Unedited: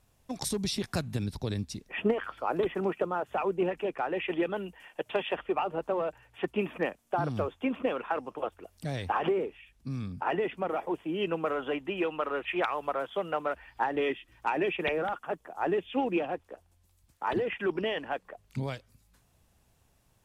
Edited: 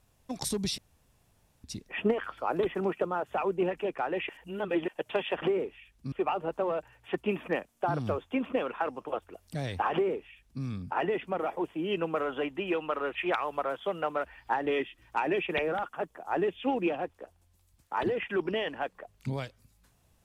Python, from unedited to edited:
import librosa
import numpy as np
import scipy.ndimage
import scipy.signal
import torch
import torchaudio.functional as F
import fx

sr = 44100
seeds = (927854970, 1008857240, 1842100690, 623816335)

y = fx.edit(x, sr, fx.room_tone_fill(start_s=0.78, length_s=0.86),
    fx.reverse_span(start_s=4.29, length_s=0.59),
    fx.duplicate(start_s=9.23, length_s=0.7, to_s=5.42), tone=tone)